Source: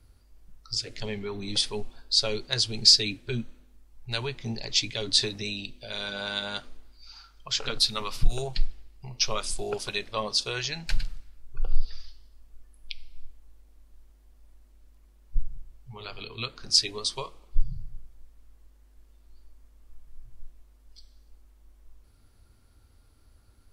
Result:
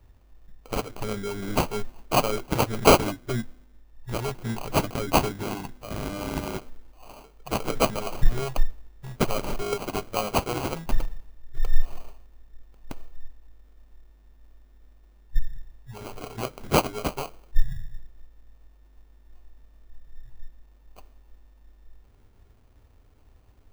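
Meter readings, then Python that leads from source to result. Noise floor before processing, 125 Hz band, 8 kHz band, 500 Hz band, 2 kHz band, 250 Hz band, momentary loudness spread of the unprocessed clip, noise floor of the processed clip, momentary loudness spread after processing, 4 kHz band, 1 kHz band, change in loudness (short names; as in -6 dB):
-58 dBFS, +5.5 dB, -3.0 dB, +8.5 dB, +2.0 dB, +8.5 dB, 17 LU, -56 dBFS, 18 LU, -10.0 dB, +12.0 dB, -0.5 dB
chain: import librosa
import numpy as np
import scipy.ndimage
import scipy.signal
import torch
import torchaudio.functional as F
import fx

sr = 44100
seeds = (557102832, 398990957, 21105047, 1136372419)

y = fx.sample_hold(x, sr, seeds[0], rate_hz=1800.0, jitter_pct=0)
y = y * librosa.db_to_amplitude(2.5)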